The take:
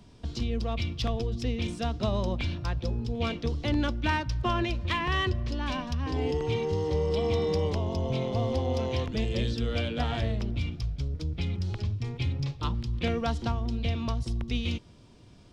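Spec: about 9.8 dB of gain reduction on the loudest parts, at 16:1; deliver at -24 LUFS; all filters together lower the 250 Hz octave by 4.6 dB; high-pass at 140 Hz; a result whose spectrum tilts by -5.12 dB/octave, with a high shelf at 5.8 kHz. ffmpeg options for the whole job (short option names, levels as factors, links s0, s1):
-af "highpass=140,equalizer=f=250:t=o:g=-5,highshelf=f=5800:g=5,acompressor=threshold=0.0178:ratio=16,volume=5.96"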